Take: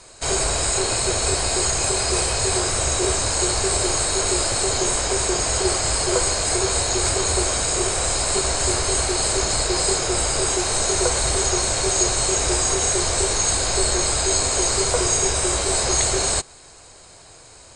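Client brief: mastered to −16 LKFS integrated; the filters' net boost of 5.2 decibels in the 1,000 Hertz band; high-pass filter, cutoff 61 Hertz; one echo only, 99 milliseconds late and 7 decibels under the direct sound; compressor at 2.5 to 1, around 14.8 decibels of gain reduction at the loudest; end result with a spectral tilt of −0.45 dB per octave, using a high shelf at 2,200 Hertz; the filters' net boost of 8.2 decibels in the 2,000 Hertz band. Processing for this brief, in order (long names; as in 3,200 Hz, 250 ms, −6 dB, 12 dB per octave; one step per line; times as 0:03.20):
high-pass filter 61 Hz
parametric band 1,000 Hz +4 dB
parametric band 2,000 Hz +6 dB
high-shelf EQ 2,200 Hz +6 dB
downward compressor 2.5 to 1, threshold −34 dBFS
single-tap delay 99 ms −7 dB
level +10.5 dB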